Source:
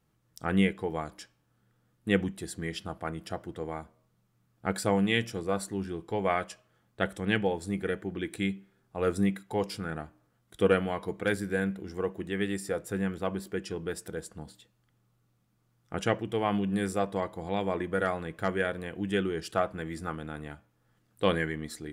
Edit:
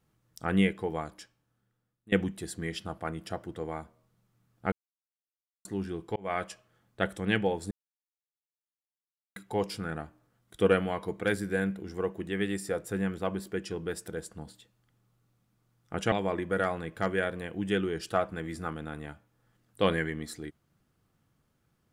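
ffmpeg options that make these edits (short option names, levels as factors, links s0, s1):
-filter_complex "[0:a]asplit=8[s0][s1][s2][s3][s4][s5][s6][s7];[s0]atrim=end=2.12,asetpts=PTS-STARTPTS,afade=t=out:st=0.92:d=1.2:silence=0.0841395[s8];[s1]atrim=start=2.12:end=4.72,asetpts=PTS-STARTPTS,afade=t=in:d=0.004:c=hsin:silence=0.0841395,afade=t=out:st=2.596:d=0.004:c=hsin[s9];[s2]atrim=start=4.72:end=5.65,asetpts=PTS-STARTPTS,volume=0[s10];[s3]atrim=start=5.65:end=6.16,asetpts=PTS-STARTPTS,afade=t=in:d=0.004:c=hsin,afade=t=out:st=0.506:d=0.004:c=hsin[s11];[s4]atrim=start=6.16:end=7.71,asetpts=PTS-STARTPTS,afade=t=in:d=0.27,afade=t=out:st=1.546:d=0.004:c=hsin[s12];[s5]atrim=start=7.71:end=9.36,asetpts=PTS-STARTPTS,volume=0[s13];[s6]atrim=start=9.36:end=16.122,asetpts=PTS-STARTPTS,afade=t=in:d=0.004:c=hsin[s14];[s7]atrim=start=17.538[s15];[s8][s9][s10][s11][s12][s13][s14]concat=n=7:v=0:a=1[s16];[s16][s15]acrossfade=d=0.004:c1=hsin:c2=hsin"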